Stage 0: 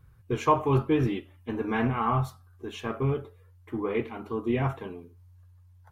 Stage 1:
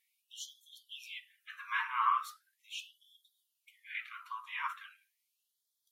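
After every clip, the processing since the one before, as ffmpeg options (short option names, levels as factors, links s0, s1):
-af "bandreject=f=121.7:t=h:w=4,bandreject=f=243.4:t=h:w=4,bandreject=f=365.1:t=h:w=4,bandreject=f=486.8:t=h:w=4,bandreject=f=608.5:t=h:w=4,bandreject=f=730.2:t=h:w=4,bandreject=f=851.9:t=h:w=4,bandreject=f=973.6:t=h:w=4,bandreject=f=1095.3:t=h:w=4,bandreject=f=1217:t=h:w=4,bandreject=f=1338.7:t=h:w=4,bandreject=f=1460.4:t=h:w=4,bandreject=f=1582.1:t=h:w=4,bandreject=f=1703.8:t=h:w=4,bandreject=f=1825.5:t=h:w=4,bandreject=f=1947.2:t=h:w=4,afftfilt=real='re*gte(b*sr/1024,880*pow(3200/880,0.5+0.5*sin(2*PI*0.39*pts/sr)))':imag='im*gte(b*sr/1024,880*pow(3200/880,0.5+0.5*sin(2*PI*0.39*pts/sr)))':win_size=1024:overlap=0.75"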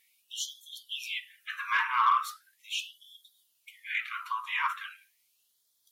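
-filter_complex "[0:a]asplit=2[s0][s1];[s1]acompressor=threshold=0.00794:ratio=6,volume=0.891[s2];[s0][s2]amix=inputs=2:normalize=0,asoftclip=type=tanh:threshold=0.1,volume=1.88"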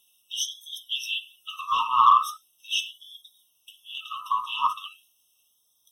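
-filter_complex "[0:a]acrossover=split=360|470|4000[s0][s1][s2][s3];[s0]acrusher=samples=37:mix=1:aa=0.000001[s4];[s4][s1][s2][s3]amix=inputs=4:normalize=0,afftfilt=real='re*eq(mod(floor(b*sr/1024/1300),2),0)':imag='im*eq(mod(floor(b*sr/1024/1300),2),0)':win_size=1024:overlap=0.75,volume=2.51"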